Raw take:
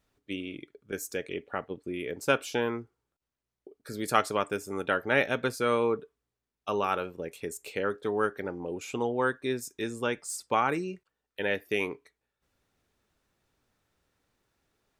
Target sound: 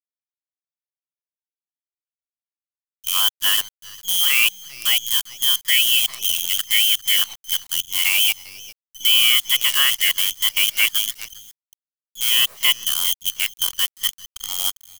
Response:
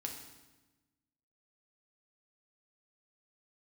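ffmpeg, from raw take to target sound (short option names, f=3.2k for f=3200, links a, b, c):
-filter_complex "[0:a]areverse,adynamicequalizer=threshold=0.01:dfrequency=770:dqfactor=1.7:tfrequency=770:tqfactor=1.7:attack=5:release=100:ratio=0.375:range=1.5:mode=boostabove:tftype=bell,anlmdn=0.0251,asplit=2[a][b];[b]alimiter=limit=-17dB:level=0:latency=1:release=104,volume=3dB[c];[a][c]amix=inputs=2:normalize=0,lowpass=f=3k:t=q:w=0.5098,lowpass=f=3k:t=q:w=0.6013,lowpass=f=3k:t=q:w=0.9,lowpass=f=3k:t=q:w=2.563,afreqshift=-3500,asplit=2[d][e];[e]aecho=0:1:400:0.141[f];[d][f]amix=inputs=2:normalize=0,acrusher=bits=5:dc=4:mix=0:aa=0.000001,crystalizer=i=6.5:c=0,volume=-8dB"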